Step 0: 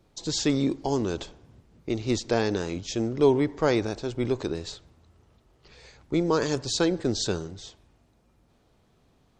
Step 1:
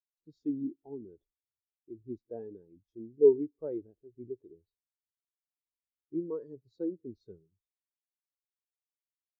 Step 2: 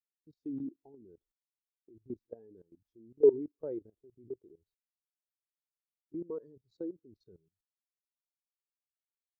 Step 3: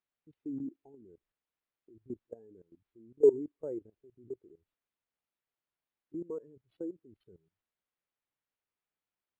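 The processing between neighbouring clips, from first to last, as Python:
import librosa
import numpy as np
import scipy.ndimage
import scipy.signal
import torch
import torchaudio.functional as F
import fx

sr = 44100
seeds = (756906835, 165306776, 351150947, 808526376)

y1 = fx.high_shelf(x, sr, hz=3800.0, db=-6.5)
y1 = fx.spectral_expand(y1, sr, expansion=2.5)
y1 = y1 * librosa.db_to_amplitude(-2.0)
y2 = fx.level_steps(y1, sr, step_db=19)
y2 = y2 * librosa.db_to_amplitude(1.5)
y3 = np.interp(np.arange(len(y2)), np.arange(len(y2))[::6], y2[::6])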